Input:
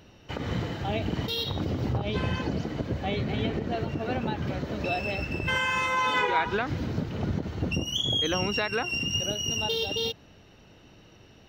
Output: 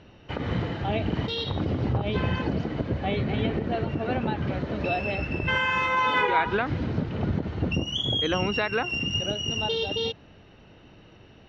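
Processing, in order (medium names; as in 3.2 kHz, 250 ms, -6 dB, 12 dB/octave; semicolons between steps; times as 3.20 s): low-pass 3.4 kHz 12 dB/octave; trim +2.5 dB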